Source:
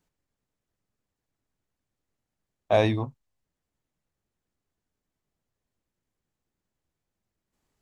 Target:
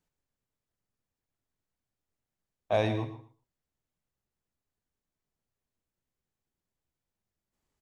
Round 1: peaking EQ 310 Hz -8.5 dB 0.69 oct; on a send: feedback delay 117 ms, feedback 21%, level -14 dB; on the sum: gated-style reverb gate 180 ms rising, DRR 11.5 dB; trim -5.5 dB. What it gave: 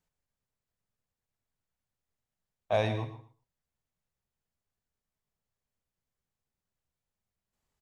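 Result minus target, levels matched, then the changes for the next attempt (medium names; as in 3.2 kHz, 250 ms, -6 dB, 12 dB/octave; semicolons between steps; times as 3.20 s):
250 Hz band -3.5 dB
change: peaking EQ 310 Hz -2 dB 0.69 oct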